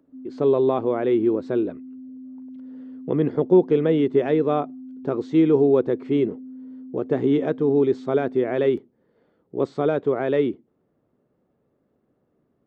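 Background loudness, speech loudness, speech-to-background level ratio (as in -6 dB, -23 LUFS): -39.5 LUFS, -21.5 LUFS, 18.0 dB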